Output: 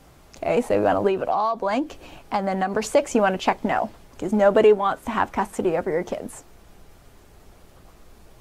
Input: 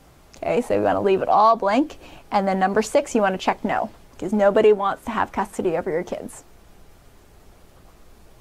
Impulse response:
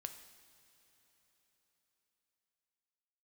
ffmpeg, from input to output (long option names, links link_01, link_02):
-filter_complex "[0:a]asettb=1/sr,asplit=3[link_01][link_02][link_03];[link_01]atrim=end=1.074[link_04];[link_02]atrim=start=1.07:end=2.82,asetpts=PTS-STARTPTS,afade=type=in:duration=0.004:curve=qsin,afade=type=out:start_time=1.746:duration=0.004:curve=qsin,acompressor=threshold=-19dB:ratio=10[link_05];[link_03]atrim=start=2.816[link_06];[link_04][link_05]acrossfade=duration=0.004:curve1=hsin:curve2=qsin[link_07];[link_07][link_06]acrossfade=duration=0.004:curve1=qsin:curve2=hsin"